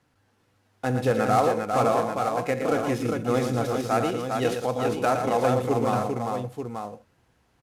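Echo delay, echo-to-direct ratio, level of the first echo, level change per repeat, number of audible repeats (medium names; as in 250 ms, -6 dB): 68 ms, -1.0 dB, -16.0 dB, no regular repeats, 4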